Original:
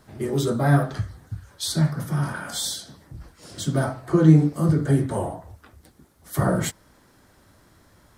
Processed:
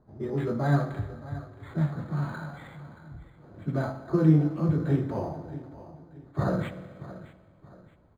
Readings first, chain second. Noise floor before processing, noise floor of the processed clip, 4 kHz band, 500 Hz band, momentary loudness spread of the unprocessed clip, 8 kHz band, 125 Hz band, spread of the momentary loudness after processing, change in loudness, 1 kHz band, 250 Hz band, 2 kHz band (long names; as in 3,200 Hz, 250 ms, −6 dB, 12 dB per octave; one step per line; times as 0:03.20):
−57 dBFS, −58 dBFS, below −15 dB, −5.0 dB, 16 LU, below −25 dB, −5.5 dB, 22 LU, −5.5 dB, −6.0 dB, −5.5 dB, −7.5 dB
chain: low-pass that shuts in the quiet parts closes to 810 Hz, open at −14.5 dBFS
repeating echo 626 ms, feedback 36%, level −15.5 dB
spring reverb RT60 2 s, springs 48/60 ms, chirp 60 ms, DRR 12 dB
linearly interpolated sample-rate reduction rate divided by 8×
level −5.5 dB